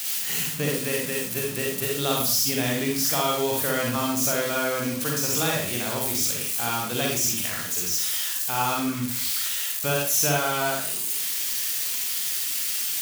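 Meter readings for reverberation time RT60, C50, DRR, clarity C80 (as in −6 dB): 0.50 s, 0.5 dB, −2.0 dB, 6.0 dB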